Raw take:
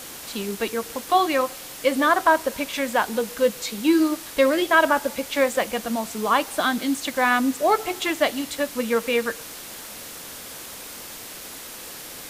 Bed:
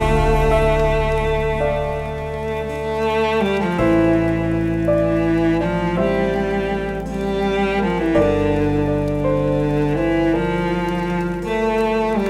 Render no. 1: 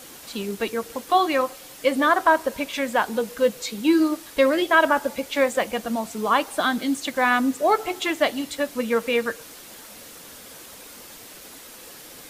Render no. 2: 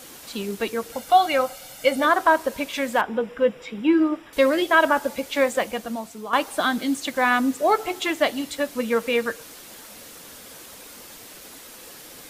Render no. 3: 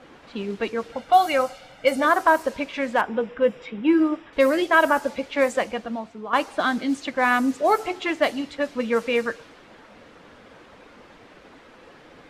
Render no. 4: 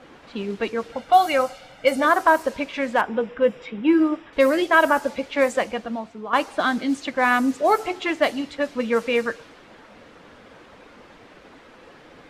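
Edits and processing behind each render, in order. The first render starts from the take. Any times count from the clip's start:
broadband denoise 6 dB, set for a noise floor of −38 dBFS
0:00.92–0:02.05: comb filter 1.4 ms; 0:03.01–0:04.33: Savitzky-Golay smoothing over 25 samples; 0:05.55–0:06.33: fade out, to −11 dB
low-pass that shuts in the quiet parts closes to 1,800 Hz, open at −14 dBFS; dynamic equaliser 3,500 Hz, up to −5 dB, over −44 dBFS, Q 3.6
level +1 dB

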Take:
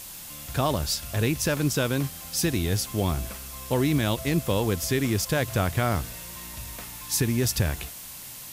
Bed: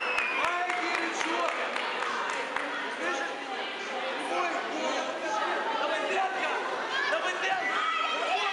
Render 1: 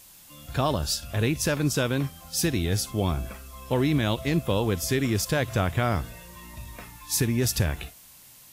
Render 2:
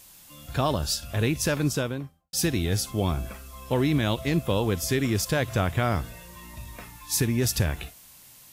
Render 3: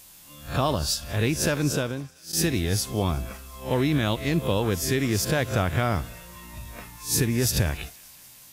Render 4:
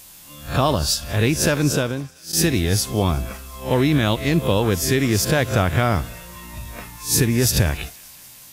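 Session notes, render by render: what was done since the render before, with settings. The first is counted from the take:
noise reduction from a noise print 10 dB
0:01.60–0:02.33: fade out and dull
peak hold with a rise ahead of every peak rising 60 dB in 0.31 s; feedback echo with a high-pass in the loop 189 ms, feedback 77%, high-pass 1,000 Hz, level −24 dB
level +5.5 dB

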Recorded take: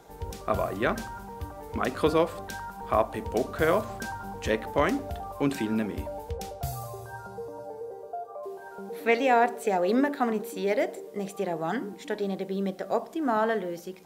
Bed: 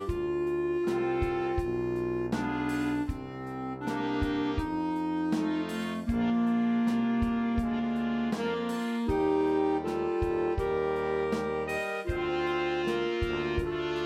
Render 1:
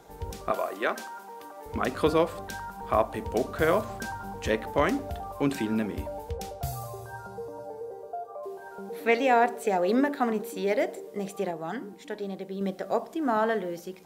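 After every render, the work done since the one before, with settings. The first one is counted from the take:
0:00.51–0:01.66: Bessel high-pass filter 390 Hz, order 4
0:11.51–0:12.61: clip gain −4.5 dB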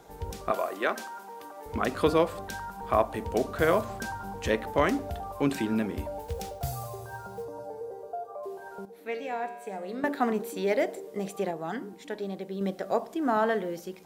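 0:06.19–0:07.46: one scale factor per block 5 bits
0:08.85–0:10.04: tuned comb filter 65 Hz, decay 1.2 s, harmonics odd, mix 80%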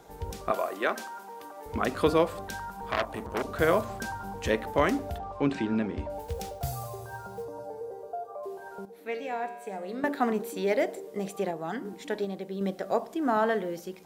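0:02.91–0:03.45: saturating transformer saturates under 2,200 Hz
0:05.18–0:06.10: high-frequency loss of the air 120 metres
0:11.85–0:12.25: clip gain +4 dB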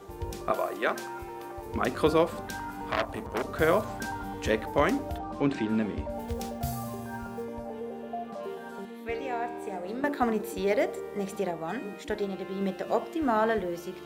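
mix in bed −13.5 dB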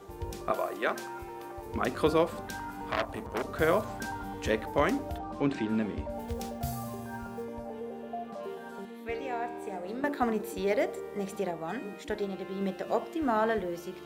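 level −2 dB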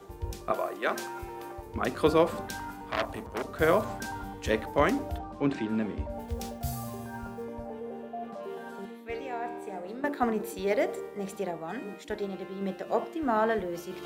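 reversed playback
upward compression, threshold −30 dBFS
reversed playback
multiband upward and downward expander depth 40%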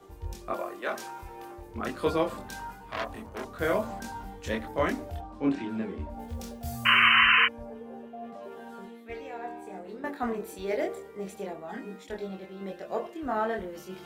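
0:06.85–0:07.46: sound drawn into the spectrogram noise 990–3,100 Hz −17 dBFS
multi-voice chorus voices 4, 0.22 Hz, delay 24 ms, depth 2.6 ms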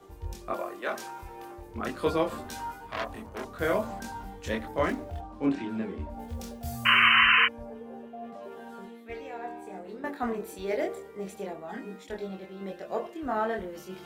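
0:02.30–0:02.87: double-tracking delay 13 ms −2 dB
0:04.83–0:05.46: running median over 9 samples

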